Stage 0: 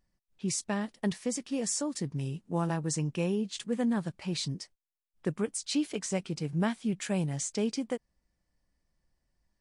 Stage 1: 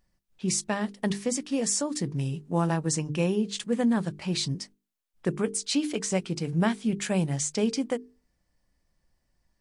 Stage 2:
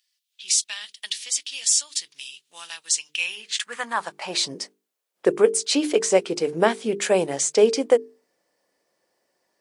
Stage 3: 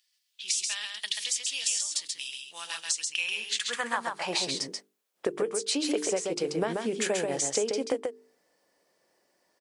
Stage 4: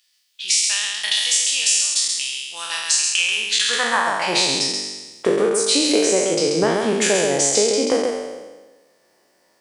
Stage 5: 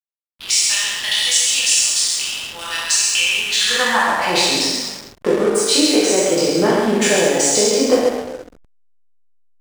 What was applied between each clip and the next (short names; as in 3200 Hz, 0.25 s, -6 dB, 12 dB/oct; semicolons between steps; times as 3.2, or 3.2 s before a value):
notches 50/100/150/200/250/300/350/400/450 Hz; gain +5 dB
high-pass sweep 3300 Hz -> 440 Hz, 3.06–4.61; gain +6.5 dB
compressor 10:1, threshold -26 dBFS, peak gain reduction 16 dB; on a send: echo 0.135 s -4 dB
spectral trails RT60 1.22 s; gain +7.5 dB
two-slope reverb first 0.63 s, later 2.3 s, DRR -2.5 dB; backlash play -22 dBFS; gain -1 dB